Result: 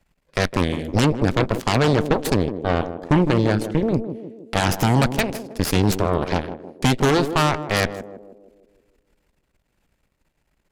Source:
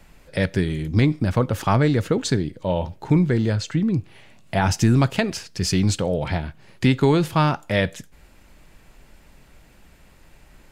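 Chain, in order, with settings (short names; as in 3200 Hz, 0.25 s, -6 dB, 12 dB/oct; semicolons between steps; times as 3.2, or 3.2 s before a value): added harmonics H 4 -12 dB, 6 -8 dB, 7 -18 dB, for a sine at -6.5 dBFS; narrowing echo 0.158 s, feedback 58%, band-pass 360 Hz, level -8 dB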